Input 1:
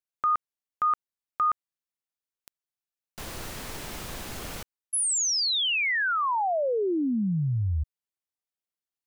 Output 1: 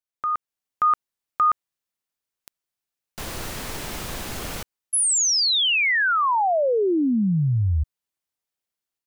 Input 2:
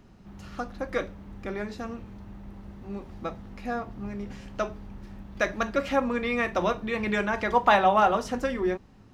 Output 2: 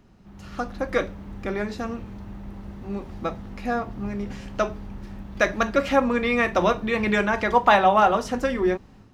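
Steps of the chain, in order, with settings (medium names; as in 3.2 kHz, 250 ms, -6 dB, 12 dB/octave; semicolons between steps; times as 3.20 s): level rider gain up to 7 dB; trim -1.5 dB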